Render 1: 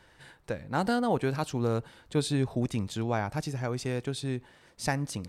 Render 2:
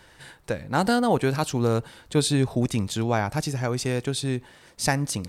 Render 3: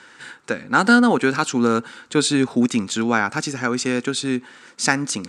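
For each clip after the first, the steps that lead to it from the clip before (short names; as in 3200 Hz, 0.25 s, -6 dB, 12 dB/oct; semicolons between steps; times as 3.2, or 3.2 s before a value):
high shelf 4500 Hz +6 dB; gain +5.5 dB
speaker cabinet 240–8500 Hz, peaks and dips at 240 Hz +8 dB, 640 Hz -9 dB, 1400 Hz +10 dB, 2400 Hz +3 dB, 7200 Hz +5 dB; gain +4.5 dB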